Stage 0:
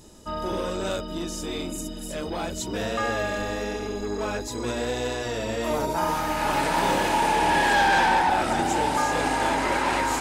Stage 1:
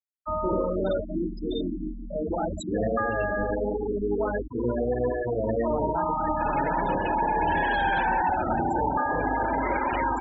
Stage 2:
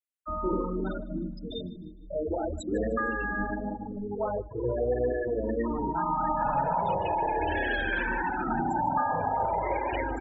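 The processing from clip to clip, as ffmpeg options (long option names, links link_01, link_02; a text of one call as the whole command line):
ffmpeg -i in.wav -filter_complex "[0:a]afftfilt=real='re*gte(hypot(re,im),0.1)':imag='im*gte(hypot(re,im),0.1)':win_size=1024:overlap=0.75,equalizer=frequency=3000:width=7:gain=8,acrossover=split=130[link_01][link_02];[link_02]alimiter=limit=-21dB:level=0:latency=1:release=241[link_03];[link_01][link_03]amix=inputs=2:normalize=0,volume=4dB" out.wav
ffmpeg -i in.wav -filter_complex "[0:a]aecho=1:1:153|306|459:0.0891|0.0357|0.0143,asplit=2[link_01][link_02];[link_02]afreqshift=-0.39[link_03];[link_01][link_03]amix=inputs=2:normalize=1" out.wav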